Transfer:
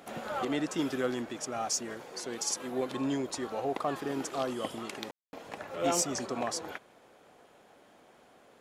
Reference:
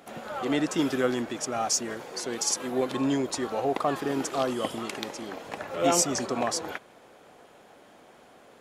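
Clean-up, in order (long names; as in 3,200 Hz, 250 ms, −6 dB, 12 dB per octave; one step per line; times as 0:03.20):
clipped peaks rebuilt −20 dBFS
ambience match 0:05.11–0:05.33
level correction +5.5 dB, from 0:00.45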